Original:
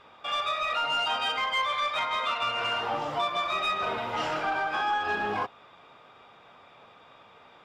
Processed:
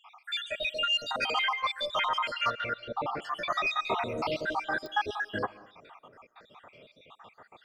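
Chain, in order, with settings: random spectral dropouts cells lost 71%; 1.08–1.64 negative-ratio compressor -33 dBFS, ratio -0.5; 2.5–3.22 Bessel low-pass 2800 Hz, order 4; reverb RT60 0.50 s, pre-delay 0.1 s, DRR 18.5 dB; pops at 4.86, -32 dBFS; gain +4 dB

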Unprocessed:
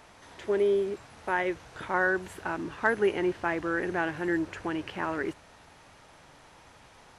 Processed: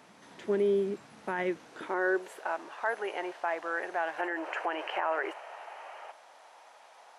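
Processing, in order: spectral gain 4.19–6.11, 320–3200 Hz +10 dB; limiter -18.5 dBFS, peak gain reduction 11.5 dB; high-pass sweep 190 Hz -> 680 Hz, 1.4–2.58; gain -3.5 dB

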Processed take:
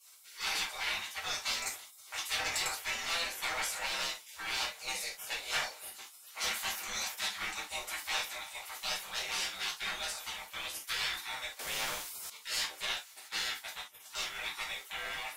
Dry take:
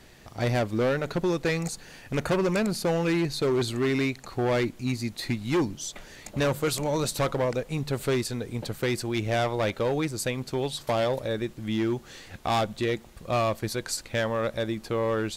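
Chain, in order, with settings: spectral gate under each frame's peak -25 dB weak; low shelf 460 Hz -7.5 dB; 13.27–14 gate -49 dBFS, range -14 dB; reverb, pre-delay 3 ms, DRR -7 dB; 11.59–12.3 spectral compressor 2:1

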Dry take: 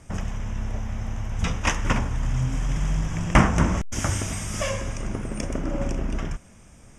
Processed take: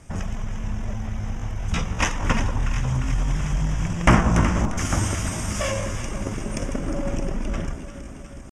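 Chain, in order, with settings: echo with dull and thin repeats by turns 0.147 s, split 1100 Hz, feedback 81%, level -8.5 dB; tempo 0.82×; gain +1 dB

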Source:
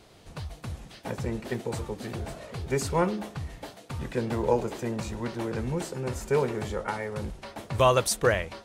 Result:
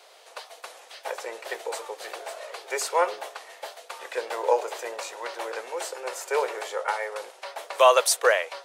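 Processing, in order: steep high-pass 490 Hz 36 dB/oct; gain +5 dB

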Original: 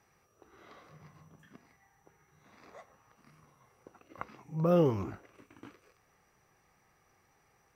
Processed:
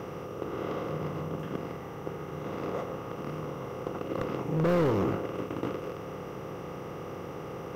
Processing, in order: per-bin compression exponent 0.4; hard clip -24 dBFS, distortion -10 dB; gain +2 dB

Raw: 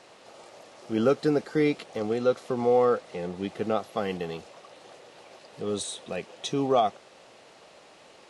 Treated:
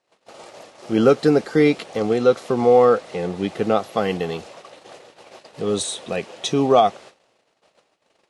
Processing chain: gate -49 dBFS, range -30 dB; gain +8 dB

